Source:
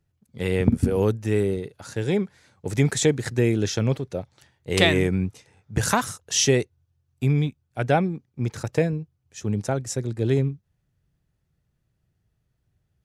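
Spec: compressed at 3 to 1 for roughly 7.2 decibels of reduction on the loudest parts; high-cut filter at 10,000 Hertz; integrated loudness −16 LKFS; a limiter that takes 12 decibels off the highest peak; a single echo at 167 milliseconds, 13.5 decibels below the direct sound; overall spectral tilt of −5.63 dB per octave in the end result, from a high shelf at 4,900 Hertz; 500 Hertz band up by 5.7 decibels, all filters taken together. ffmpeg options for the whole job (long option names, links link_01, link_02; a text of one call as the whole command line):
ffmpeg -i in.wav -af "lowpass=10000,equalizer=frequency=500:width_type=o:gain=7,highshelf=frequency=4900:gain=-9,acompressor=threshold=-20dB:ratio=3,alimiter=limit=-19dB:level=0:latency=1,aecho=1:1:167:0.211,volume=14dB" out.wav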